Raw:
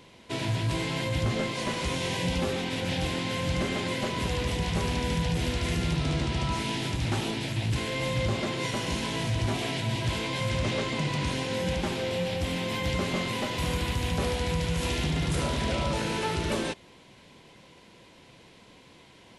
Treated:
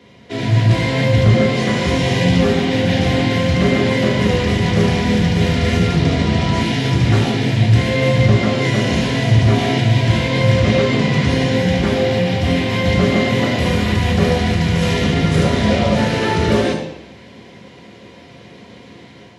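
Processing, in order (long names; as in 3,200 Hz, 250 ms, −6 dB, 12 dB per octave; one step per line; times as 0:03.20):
automatic gain control gain up to 5.5 dB
convolution reverb RT60 0.85 s, pre-delay 3 ms, DRR −1 dB
level −3.5 dB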